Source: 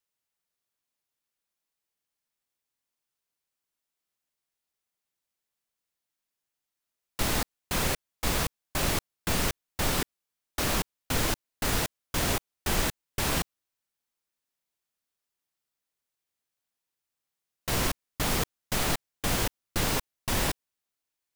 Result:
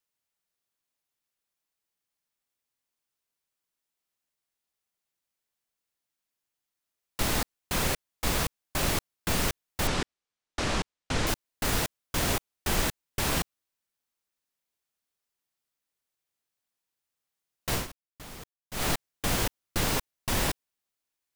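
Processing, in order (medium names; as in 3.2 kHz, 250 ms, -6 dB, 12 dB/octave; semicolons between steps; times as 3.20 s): 9.87–11.27 s: Bessel low-pass 6 kHz, order 6; 17.73–18.85 s: dip -17 dB, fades 0.14 s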